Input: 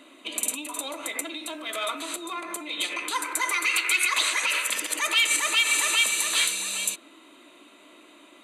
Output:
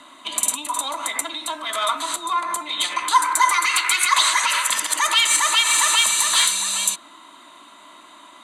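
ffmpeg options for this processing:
-filter_complex "[0:a]lowpass=11000,acrossover=split=230|540|2500[s0][s1][s2][s3];[s1]acrusher=bits=2:mix=0:aa=0.5[s4];[s0][s4][s2][s3]amix=inputs=4:normalize=0,asoftclip=type=tanh:threshold=0.266,equalizer=f=500:t=o:w=0.33:g=-7,equalizer=f=1000:t=o:w=0.33:g=8,equalizer=f=2500:t=o:w=0.33:g=-11,volume=2.66"

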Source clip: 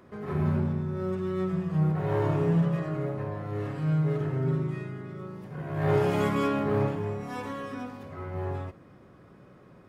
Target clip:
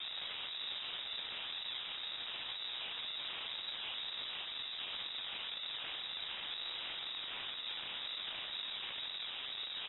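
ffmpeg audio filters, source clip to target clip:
-filter_complex "[0:a]highshelf=f=1800:t=q:w=3:g=-8.5,asplit=2[s0][s1];[s1]asplit=4[s2][s3][s4][s5];[s2]adelay=259,afreqshift=57,volume=0.168[s6];[s3]adelay=518,afreqshift=114,volume=0.0759[s7];[s4]adelay=777,afreqshift=171,volume=0.0339[s8];[s5]adelay=1036,afreqshift=228,volume=0.0153[s9];[s6][s7][s8][s9]amix=inputs=4:normalize=0[s10];[s0][s10]amix=inputs=2:normalize=0,acompressor=threshold=0.01:ratio=5,adynamicequalizer=threshold=0.00112:dfrequency=580:dqfactor=1.6:tfrequency=580:tqfactor=1.6:attack=5:release=100:ratio=0.375:range=2.5:mode=boostabove:tftype=bell,acompressor=mode=upward:threshold=0.0251:ratio=2.5,highpass=280,acrusher=samples=41:mix=1:aa=0.000001:lfo=1:lforange=41:lforate=2,aresample=11025,aeval=exprs='(mod(133*val(0)+1,2)-1)/133':c=same,aresample=44100,lowpass=f=3300:t=q:w=0.5098,lowpass=f=3300:t=q:w=0.6013,lowpass=f=3300:t=q:w=0.9,lowpass=f=3300:t=q:w=2.563,afreqshift=-3900,volume=1.78"

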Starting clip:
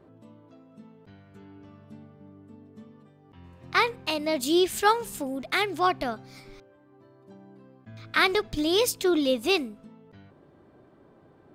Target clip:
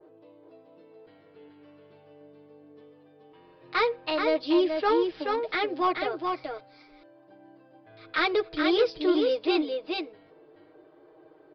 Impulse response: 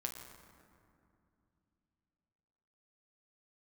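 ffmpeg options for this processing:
-af "lowshelf=f=280:t=q:w=3:g=-10,aecho=1:1:6.4:0.97,aresample=11025,asoftclip=type=tanh:threshold=0.251,aresample=44100,aecho=1:1:428:0.596,adynamicequalizer=threshold=0.0224:dfrequency=1600:dqfactor=0.7:tfrequency=1600:tqfactor=0.7:attack=5:release=100:ratio=0.375:range=2.5:mode=cutabove:tftype=highshelf,volume=0.596"

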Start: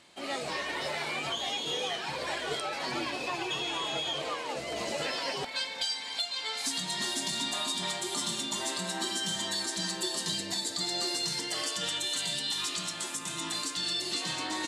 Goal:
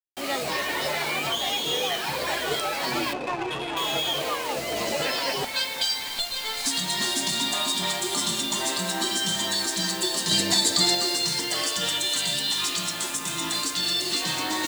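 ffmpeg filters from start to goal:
-filter_complex "[0:a]asettb=1/sr,asplit=3[s0][s1][s2];[s0]atrim=end=6.084[s3];[s1]atrim=start=6.08:end=6.66,asetpts=PTS-STARTPTS,afade=t=in:d=0.004:c=qsin,afade=t=out:st=0.576:d=0.004:c=qsin,aeval=exprs='(tanh(17.8*val(0)+0.5)-tanh(0.5))/17.8':c=same[s4];[s2]atrim=start=6.656[s5];[s3][s4]acrossfade=d=0.004:c1=hsin:c2=qsin[s6];[s6][s5]acrossfade=d=0.004:c1=qsin:c2=hsin,asettb=1/sr,asplit=3[s7][s8][s9];[s7]atrim=end=10.314[s10];[s8]atrim=start=10.31:end=10.95,asetpts=PTS-STARTPTS,afade=t=in:d=0.004:c=qsin,afade=t=out:st=0.636:d=0.004:c=qsin,acontrast=35[s11];[s9]atrim=start=10.946[s12];[s10][s11]acrossfade=d=0.004:c1=hsin:c2=qsin[s13];[s13][s12]acrossfade=d=0.004:c1=qsin:c2=hsin,acrusher=bits=6:mix=0:aa=0.000001,asettb=1/sr,asplit=3[s14][s15][s16];[s14]atrim=end=3.134[s17];[s15]atrim=start=3.13:end=3.77,asetpts=PTS-STARTPTS,afade=t=in:d=0.004:c=qsin,afade=t=out:st=0.636:d=0.004:c=qsin,adynamicsmooth=sensitivity=3.5:basefreq=910[s18];[s16]atrim=start=3.766[s19];[s17][s18]acrossfade=d=0.004:c1=hsin:c2=qsin[s20];[s20][s19]acrossfade=d=0.004:c1=qsin:c2=hsin,volume=2.11"

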